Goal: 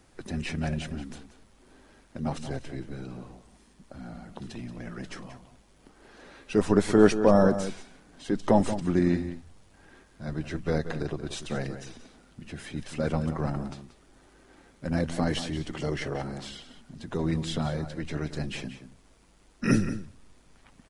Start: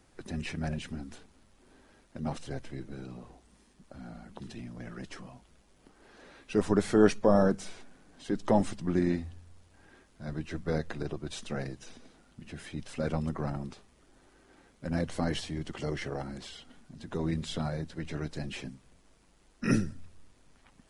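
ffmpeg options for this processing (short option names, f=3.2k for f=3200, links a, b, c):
-filter_complex "[0:a]asplit=2[a][b];[b]adelay=180.8,volume=-11dB,highshelf=f=4k:g=-4.07[c];[a][c]amix=inputs=2:normalize=0,volume=3.5dB"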